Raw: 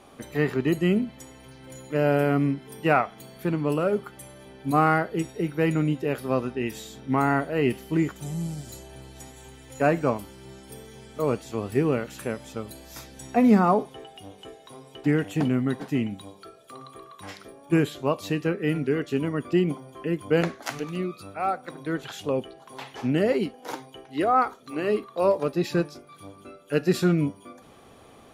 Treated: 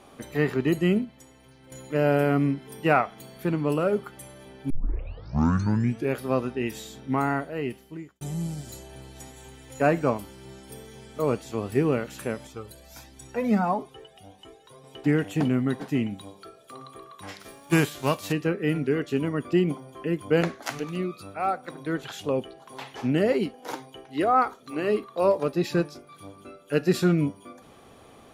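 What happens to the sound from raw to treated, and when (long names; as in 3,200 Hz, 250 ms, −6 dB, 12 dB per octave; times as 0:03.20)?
0:00.90–0:01.72: expander for the loud parts, over −33 dBFS
0:04.70: tape start 1.48 s
0:06.90–0:08.21: fade out
0:12.47–0:14.84: flanger whose copies keep moving one way rising 1.5 Hz
0:17.39–0:18.31: spectral envelope flattened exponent 0.6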